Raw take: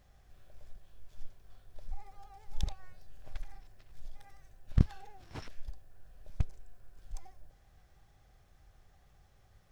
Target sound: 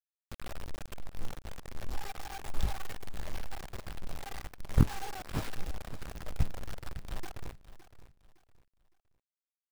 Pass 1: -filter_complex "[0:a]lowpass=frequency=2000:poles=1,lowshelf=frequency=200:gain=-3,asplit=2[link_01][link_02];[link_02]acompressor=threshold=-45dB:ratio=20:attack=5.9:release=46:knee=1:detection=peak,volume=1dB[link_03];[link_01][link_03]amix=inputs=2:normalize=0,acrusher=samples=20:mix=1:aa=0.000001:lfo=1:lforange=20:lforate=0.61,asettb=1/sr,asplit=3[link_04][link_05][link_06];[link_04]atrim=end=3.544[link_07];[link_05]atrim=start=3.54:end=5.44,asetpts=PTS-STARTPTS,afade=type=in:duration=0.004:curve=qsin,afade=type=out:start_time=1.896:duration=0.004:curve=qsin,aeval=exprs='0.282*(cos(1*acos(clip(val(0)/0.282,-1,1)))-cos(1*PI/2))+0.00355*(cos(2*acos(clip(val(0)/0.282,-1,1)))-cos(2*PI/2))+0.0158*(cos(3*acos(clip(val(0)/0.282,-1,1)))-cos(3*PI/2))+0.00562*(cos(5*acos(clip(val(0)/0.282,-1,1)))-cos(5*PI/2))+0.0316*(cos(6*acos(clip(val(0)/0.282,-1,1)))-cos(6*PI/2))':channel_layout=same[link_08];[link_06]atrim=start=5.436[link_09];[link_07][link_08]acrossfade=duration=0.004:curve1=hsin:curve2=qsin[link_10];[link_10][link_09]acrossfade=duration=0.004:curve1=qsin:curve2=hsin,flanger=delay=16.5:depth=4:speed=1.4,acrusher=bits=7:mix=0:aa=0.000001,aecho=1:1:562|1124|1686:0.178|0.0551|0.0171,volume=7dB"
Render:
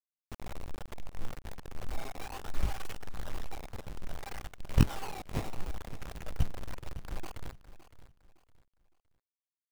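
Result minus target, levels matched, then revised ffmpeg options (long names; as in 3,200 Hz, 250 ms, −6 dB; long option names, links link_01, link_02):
sample-and-hold swept by an LFO: distortion +9 dB
-filter_complex "[0:a]lowpass=frequency=2000:poles=1,lowshelf=frequency=200:gain=-3,asplit=2[link_01][link_02];[link_02]acompressor=threshold=-45dB:ratio=20:attack=5.9:release=46:knee=1:detection=peak,volume=1dB[link_03];[link_01][link_03]amix=inputs=2:normalize=0,acrusher=samples=5:mix=1:aa=0.000001:lfo=1:lforange=5:lforate=0.61,asettb=1/sr,asplit=3[link_04][link_05][link_06];[link_04]atrim=end=3.544[link_07];[link_05]atrim=start=3.54:end=5.44,asetpts=PTS-STARTPTS,afade=type=in:duration=0.004:curve=qsin,afade=type=out:start_time=1.896:duration=0.004:curve=qsin,aeval=exprs='0.282*(cos(1*acos(clip(val(0)/0.282,-1,1)))-cos(1*PI/2))+0.00355*(cos(2*acos(clip(val(0)/0.282,-1,1)))-cos(2*PI/2))+0.0158*(cos(3*acos(clip(val(0)/0.282,-1,1)))-cos(3*PI/2))+0.00562*(cos(5*acos(clip(val(0)/0.282,-1,1)))-cos(5*PI/2))+0.0316*(cos(6*acos(clip(val(0)/0.282,-1,1)))-cos(6*PI/2))':channel_layout=same[link_08];[link_06]atrim=start=5.436[link_09];[link_07][link_08]acrossfade=duration=0.004:curve1=hsin:curve2=qsin[link_10];[link_10][link_09]acrossfade=duration=0.004:curve1=qsin:curve2=hsin,flanger=delay=16.5:depth=4:speed=1.4,acrusher=bits=7:mix=0:aa=0.000001,aecho=1:1:562|1124|1686:0.178|0.0551|0.0171,volume=7dB"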